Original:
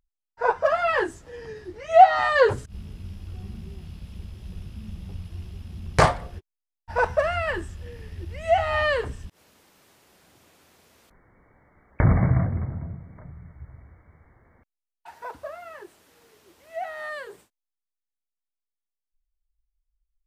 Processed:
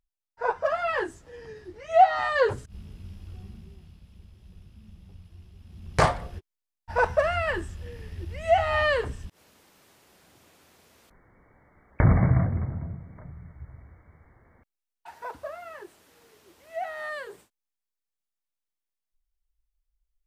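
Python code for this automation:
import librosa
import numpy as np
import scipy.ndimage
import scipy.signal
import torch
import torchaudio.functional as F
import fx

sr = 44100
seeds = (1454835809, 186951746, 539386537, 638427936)

y = fx.gain(x, sr, db=fx.line((3.33, -4.5), (4.04, -12.0), (5.54, -12.0), (6.18, -0.5)))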